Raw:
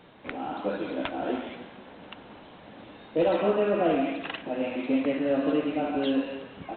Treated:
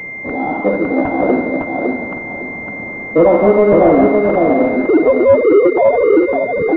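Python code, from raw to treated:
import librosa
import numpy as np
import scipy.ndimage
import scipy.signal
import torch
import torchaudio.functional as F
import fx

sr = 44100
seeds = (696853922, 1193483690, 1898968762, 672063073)

p1 = fx.sine_speech(x, sr, at=(4.85, 6.33))
p2 = fx.echo_feedback(p1, sr, ms=557, feedback_pct=24, wet_db=-4)
p3 = fx.spec_gate(p2, sr, threshold_db=-25, keep='strong')
p4 = fx.fold_sine(p3, sr, drive_db=7, ceiling_db=-11.0)
p5 = p3 + F.gain(torch.from_numpy(p4), -7.0).numpy()
p6 = fx.pwm(p5, sr, carrier_hz=2100.0)
y = F.gain(torch.from_numpy(p6), 8.0).numpy()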